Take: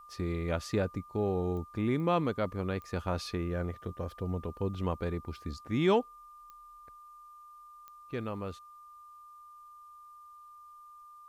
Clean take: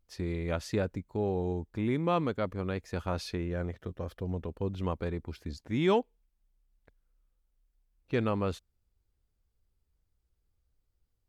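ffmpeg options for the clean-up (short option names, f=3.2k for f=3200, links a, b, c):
-af "adeclick=t=4,bandreject=f=1.2k:w=30,agate=range=-21dB:threshold=-45dB,asetnsamples=n=441:p=0,asendcmd='6.95 volume volume 7.5dB',volume=0dB"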